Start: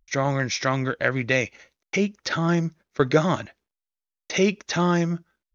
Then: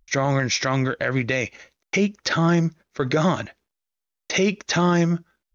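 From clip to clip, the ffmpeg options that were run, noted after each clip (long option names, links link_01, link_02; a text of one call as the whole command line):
ffmpeg -i in.wav -af "alimiter=limit=-15.5dB:level=0:latency=1:release=43,volume=4.5dB" out.wav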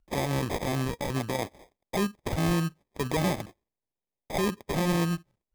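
ffmpeg -i in.wav -af "acrusher=samples=31:mix=1:aa=0.000001,volume=-7dB" out.wav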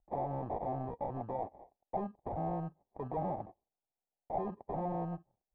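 ffmpeg -i in.wav -af "asoftclip=type=tanh:threshold=-27.5dB,lowpass=frequency=770:width_type=q:width=4.6,volume=-8.5dB" out.wav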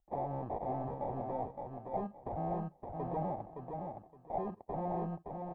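ffmpeg -i in.wav -af "aecho=1:1:567|1134|1701:0.562|0.124|0.0272,volume=-1dB" out.wav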